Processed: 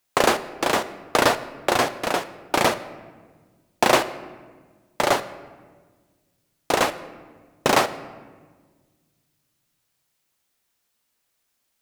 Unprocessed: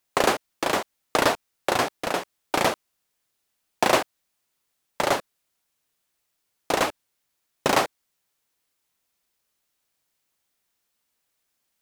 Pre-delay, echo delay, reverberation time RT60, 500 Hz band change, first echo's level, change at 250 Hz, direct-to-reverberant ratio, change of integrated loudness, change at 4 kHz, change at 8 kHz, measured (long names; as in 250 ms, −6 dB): 8 ms, no echo audible, 1.5 s, +3.0 dB, no echo audible, +3.0 dB, 11.5 dB, +2.5 dB, +2.5 dB, +2.5 dB